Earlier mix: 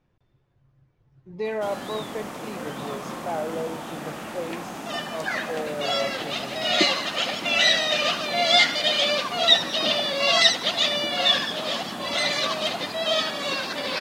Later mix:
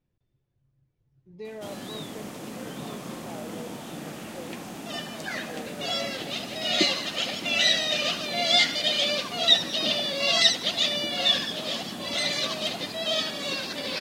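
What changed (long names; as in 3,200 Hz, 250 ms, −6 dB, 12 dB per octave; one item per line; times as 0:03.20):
speech −7.5 dB
master: add parametric band 1,100 Hz −8.5 dB 2 octaves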